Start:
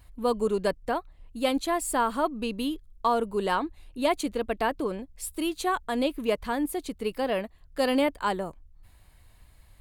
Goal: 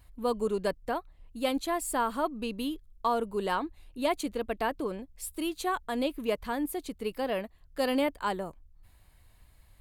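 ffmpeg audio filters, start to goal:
ffmpeg -i in.wav -af "equalizer=frequency=13000:width=5.4:gain=6.5,volume=-3.5dB" out.wav

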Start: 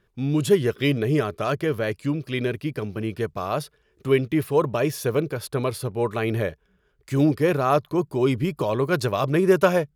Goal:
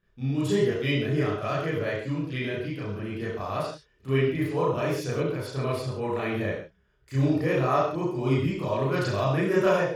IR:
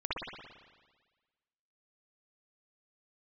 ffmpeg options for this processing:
-filter_complex "[1:a]atrim=start_sample=2205,afade=type=out:start_time=0.41:duration=0.01,atrim=end_sample=18522,asetrate=83790,aresample=44100[link_01];[0:a][link_01]afir=irnorm=-1:irlink=0,volume=-3.5dB"

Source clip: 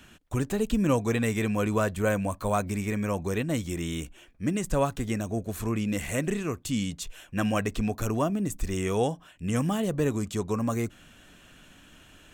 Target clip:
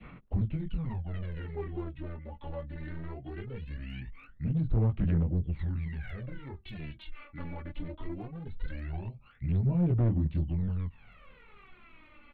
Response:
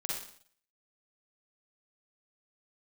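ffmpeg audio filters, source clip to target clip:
-filter_complex "[0:a]adynamicequalizer=threshold=0.00794:dfrequency=1500:dqfactor=1.2:tfrequency=1500:tqfactor=1.2:attack=5:release=100:ratio=0.375:range=2.5:mode=cutabove:tftype=bell,acrossover=split=230[link_01][link_02];[link_02]acompressor=threshold=-39dB:ratio=6[link_03];[link_01][link_03]amix=inputs=2:normalize=0,asoftclip=type=tanh:threshold=-17dB,flanger=delay=17.5:depth=3.7:speed=0.93,aresample=11025,volume=31.5dB,asoftclip=hard,volume=-31.5dB,aresample=44100,aphaser=in_gain=1:out_gain=1:delay=2.8:decay=0.76:speed=0.2:type=sinusoidal,asetrate=35002,aresample=44100,atempo=1.25992,volume=-2.5dB"

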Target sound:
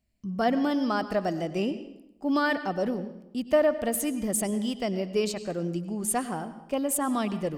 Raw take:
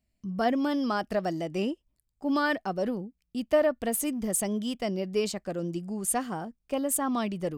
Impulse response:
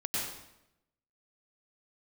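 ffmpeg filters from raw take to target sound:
-filter_complex "[0:a]asplit=2[link_01][link_02];[1:a]atrim=start_sample=2205,lowpass=7400[link_03];[link_02][link_03]afir=irnorm=-1:irlink=0,volume=-15.5dB[link_04];[link_01][link_04]amix=inputs=2:normalize=0"

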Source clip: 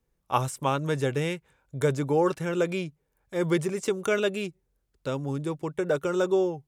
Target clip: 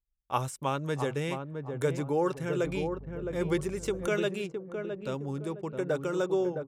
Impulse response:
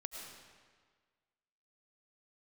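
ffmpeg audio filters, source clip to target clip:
-filter_complex "[0:a]asplit=2[link_01][link_02];[link_02]adelay=663,lowpass=frequency=880:poles=1,volume=-5dB,asplit=2[link_03][link_04];[link_04]adelay=663,lowpass=frequency=880:poles=1,volume=0.4,asplit=2[link_05][link_06];[link_06]adelay=663,lowpass=frequency=880:poles=1,volume=0.4,asplit=2[link_07][link_08];[link_08]adelay=663,lowpass=frequency=880:poles=1,volume=0.4,asplit=2[link_09][link_10];[link_10]adelay=663,lowpass=frequency=880:poles=1,volume=0.4[link_11];[link_01][link_03][link_05][link_07][link_09][link_11]amix=inputs=6:normalize=0,asettb=1/sr,asplit=3[link_12][link_13][link_14];[link_12]atrim=end=2.654[link_15];[link_13]atrim=start=2.65:end=4.07,asetpts=PTS-STARTPTS,afade=type=in:duration=0.004:curve=qsin,afade=type=out:start_time=1.416:duration=0.004:curve=qsin,aeval=exprs='val(0)+0.0112*(sin(2*PI*50*n/s)+sin(2*PI*2*50*n/s)/2+sin(2*PI*3*50*n/s)/3+sin(2*PI*4*50*n/s)/4+sin(2*PI*5*50*n/s)/5)':channel_layout=same[link_16];[link_14]atrim=start=4.066[link_17];[link_15][link_16]acrossfade=duration=0.004:curve1=hsin:curve2=qsin[link_18];[link_18][link_17]acrossfade=duration=0.004:curve1=qsin:curve2=hsin,anlmdn=0.00631,volume=-4.5dB"

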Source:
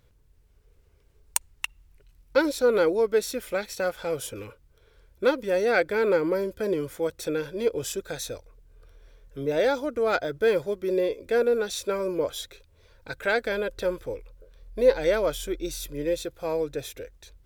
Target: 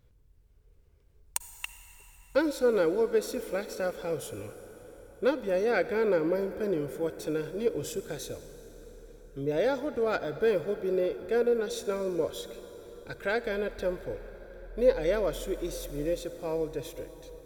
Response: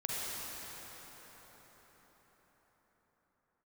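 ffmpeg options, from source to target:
-filter_complex "[0:a]lowshelf=frequency=490:gain=6.5,asplit=2[link_01][link_02];[1:a]atrim=start_sample=2205,highshelf=frequency=9700:gain=10[link_03];[link_02][link_03]afir=irnorm=-1:irlink=0,volume=-15.5dB[link_04];[link_01][link_04]amix=inputs=2:normalize=0,volume=-8dB"

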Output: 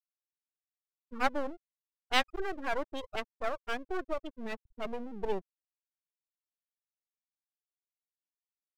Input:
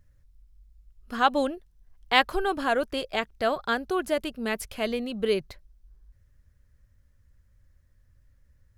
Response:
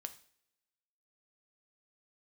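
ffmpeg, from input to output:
-af "afftfilt=real='re*gte(hypot(re,im),0.112)':imag='im*gte(hypot(re,im),0.112)':win_size=1024:overlap=0.75,aeval=exprs='max(val(0),0)':channel_layout=same,volume=-3.5dB"

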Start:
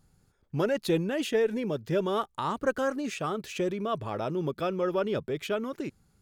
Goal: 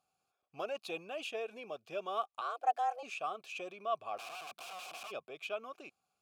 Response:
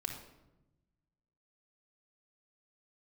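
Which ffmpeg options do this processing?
-filter_complex "[0:a]asplit=3[link_01][link_02][link_03];[link_01]afade=type=out:start_time=4.17:duration=0.02[link_04];[link_02]aeval=exprs='(mod(47.3*val(0)+1,2)-1)/47.3':channel_layout=same,afade=type=in:start_time=4.17:duration=0.02,afade=type=out:start_time=5.1:duration=0.02[link_05];[link_03]afade=type=in:start_time=5.1:duration=0.02[link_06];[link_04][link_05][link_06]amix=inputs=3:normalize=0,crystalizer=i=7:c=0,asettb=1/sr,asplit=3[link_07][link_08][link_09];[link_07]atrim=end=2.414[link_10];[link_08]atrim=start=2.41:end=3.03,asetpts=PTS-STARTPTS,afade=type=in:duration=0.004:curve=qsin,afade=type=out:start_time=0.616:duration=0.004:curve=qsin,afreqshift=240[link_11];[link_09]atrim=start=3.026[link_12];[link_10][link_11]acrossfade=duration=0.004:curve1=hsin:curve2=qsin[link_13];[link_13][link_12]acrossfade=duration=0.004:curve1=qsin:curve2=hsin,asplit=3[link_14][link_15][link_16];[link_14]bandpass=frequency=730:width_type=q:width=8,volume=0dB[link_17];[link_15]bandpass=frequency=1090:width_type=q:width=8,volume=-6dB[link_18];[link_16]bandpass=frequency=2440:width_type=q:width=8,volume=-9dB[link_19];[link_17][link_18][link_19]amix=inputs=3:normalize=0,volume=-1dB"

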